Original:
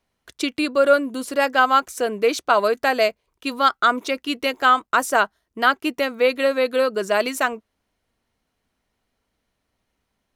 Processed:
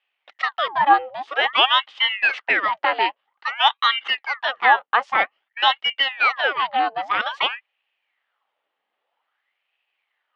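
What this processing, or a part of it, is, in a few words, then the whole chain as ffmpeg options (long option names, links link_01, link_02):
voice changer toy: -af "aeval=exprs='val(0)*sin(2*PI*1400*n/s+1400*0.85/0.51*sin(2*PI*0.51*n/s))':channel_layout=same,highpass=530,equalizer=frequency=550:width_type=q:width=4:gain=4,equalizer=frequency=810:width_type=q:width=4:gain=9,equalizer=frequency=1200:width_type=q:width=4:gain=5,equalizer=frequency=1900:width_type=q:width=4:gain=6,equalizer=frequency=3000:width_type=q:width=4:gain=9,lowpass=frequency=3700:width=0.5412,lowpass=frequency=3700:width=1.3066,volume=-2dB"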